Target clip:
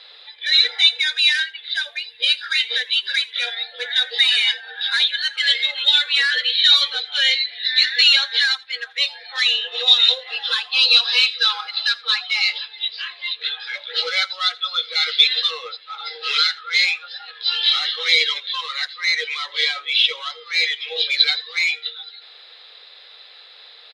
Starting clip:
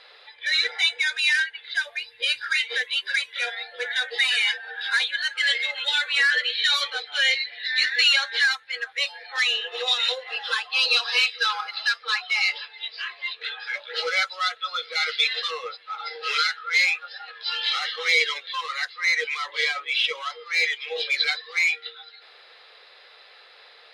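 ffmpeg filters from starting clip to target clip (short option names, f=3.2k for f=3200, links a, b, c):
-filter_complex "[0:a]equalizer=f=3.7k:t=o:w=0.65:g=11.5,asplit=2[a][b];[b]aecho=0:1:83:0.0708[c];[a][c]amix=inputs=2:normalize=0,volume=-1dB"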